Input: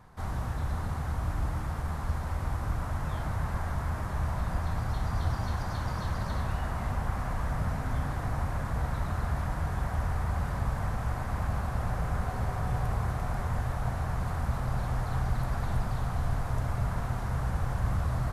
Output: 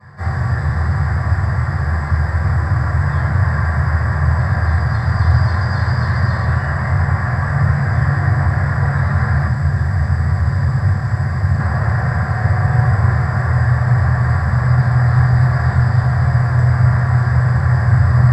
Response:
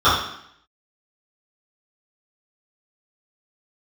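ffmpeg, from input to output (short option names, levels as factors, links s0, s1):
-filter_complex "[1:a]atrim=start_sample=2205,asetrate=61740,aresample=44100[s0];[0:a][s0]afir=irnorm=-1:irlink=0,asettb=1/sr,asplit=3[s1][s2][s3];[s1]atrim=end=9.474[s4];[s2]atrim=start=9.47:end=11.6,asetpts=PTS-STARTPTS,afade=t=in:d=0.004:c=qsin,afade=t=out:st=2.126:d=0.004:c=qsin,acrossover=split=380|3000[s5][s6][s7];[s6]acompressor=threshold=0.0794:ratio=3[s8];[s5][s8][s7]amix=inputs=3:normalize=0[s9];[s3]atrim=start=11.596[s10];[s4][s9]acrossfade=d=0.004:c1=hsin:c2=qsin[s11];[s11][s10]acrossfade=d=0.004:c1=qsin:c2=hsin,volume=0.376"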